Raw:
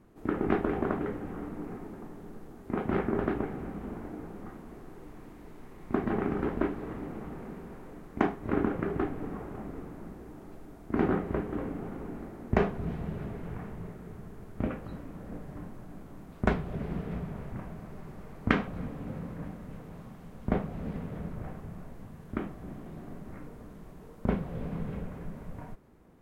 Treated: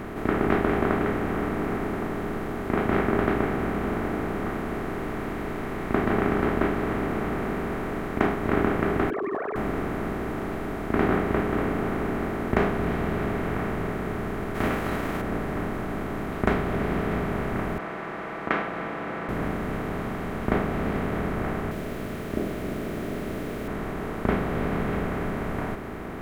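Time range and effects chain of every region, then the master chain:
0:09.10–0:09.56: three sine waves on the formant tracks + high-pass filter 320 Hz
0:14.54–0:15.20: spectral envelope flattened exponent 0.6 + hard clipping −27 dBFS
0:17.78–0:19.29: band-pass filter 720–2,400 Hz + comb filter 6 ms, depth 72%
0:21.71–0:23.68: Butterworth low-pass 660 Hz 96 dB per octave + low-shelf EQ 190 Hz −9 dB + bit-depth reduction 10 bits, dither triangular
whole clip: compressor on every frequency bin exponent 0.4; parametric band 84 Hz −2.5 dB 1.9 octaves

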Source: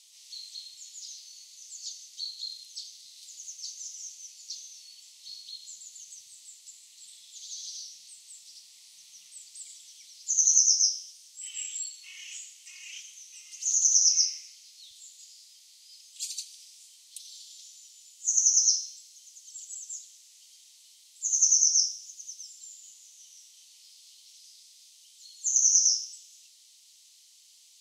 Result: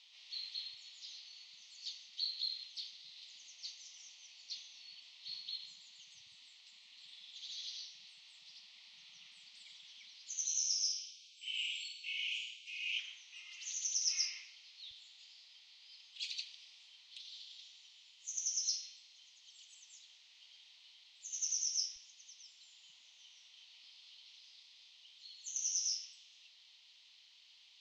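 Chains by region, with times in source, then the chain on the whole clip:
0:10.46–0:12.99: Chebyshev high-pass filter 2,300 Hz, order 6 + flutter between parallel walls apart 9 metres, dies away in 0.64 s
whole clip: low-pass filter 3,600 Hz 24 dB per octave; dynamic equaliser 1,900 Hz, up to +4 dB, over −56 dBFS, Q 0.71; level +4 dB

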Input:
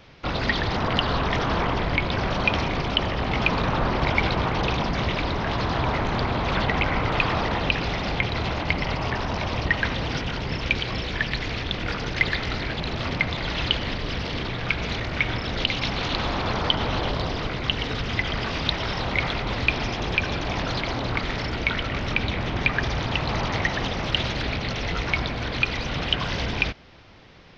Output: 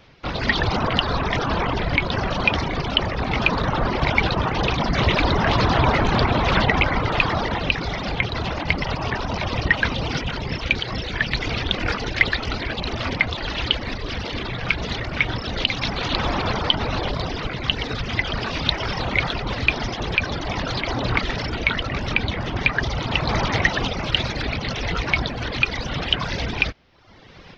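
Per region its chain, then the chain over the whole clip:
0:11.67–0:14.51: parametric band 150 Hz −7 dB 0.37 octaves + highs frequency-modulated by the lows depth 0.15 ms
whole clip: reverb reduction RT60 0.85 s; automatic gain control gain up to 11.5 dB; level −1 dB

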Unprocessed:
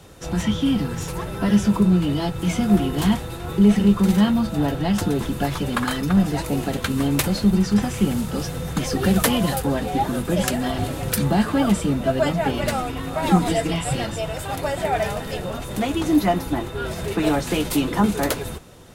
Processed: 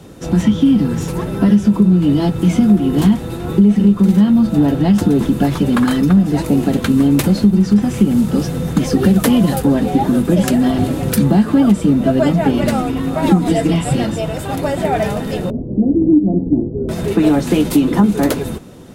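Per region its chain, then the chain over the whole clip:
0:15.50–0:16.89: inverse Chebyshev low-pass filter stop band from 2,800 Hz, stop band 80 dB + flutter between parallel walls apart 8.5 metres, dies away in 0.27 s
whole clip: parametric band 240 Hz +11.5 dB 1.8 octaves; downward compressor 5 to 1, threshold −10 dBFS; level +2 dB

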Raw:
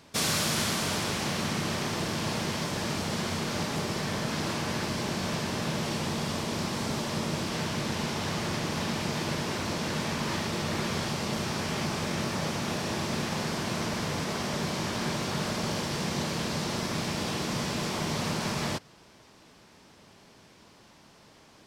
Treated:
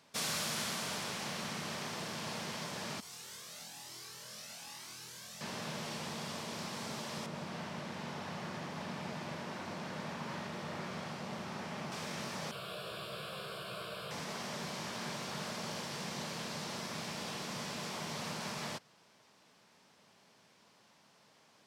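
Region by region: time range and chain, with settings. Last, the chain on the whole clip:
0:03.00–0:05.41: first-order pre-emphasis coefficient 0.8 + flutter between parallel walls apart 4.1 metres, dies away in 0.81 s + flanger whose copies keep moving one way rising 1.1 Hz
0:07.26–0:11.92: high-shelf EQ 2,900 Hz −11.5 dB + single-tap delay 85 ms −5.5 dB
0:12.51–0:14.11: phaser with its sweep stopped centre 1,300 Hz, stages 8 + double-tracking delay 15 ms −3.5 dB
whole clip: high-pass filter 170 Hz 12 dB per octave; parametric band 320 Hz −7 dB 0.78 octaves; level −8 dB

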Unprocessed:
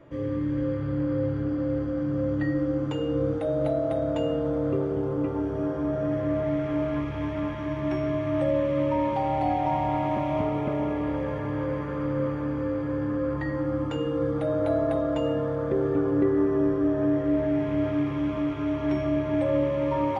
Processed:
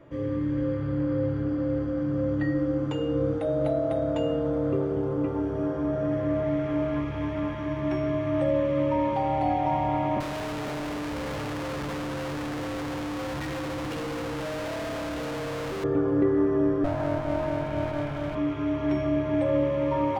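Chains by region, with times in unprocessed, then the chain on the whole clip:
0:10.20–0:15.84: sign of each sample alone + low-pass filter 2,700 Hz 6 dB per octave + tube saturation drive 29 dB, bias 0.65
0:16.84–0:18.35: lower of the sound and its delayed copy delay 1.3 ms + parametric band 460 Hz −3.5 dB 0.36 octaves
whole clip: no processing

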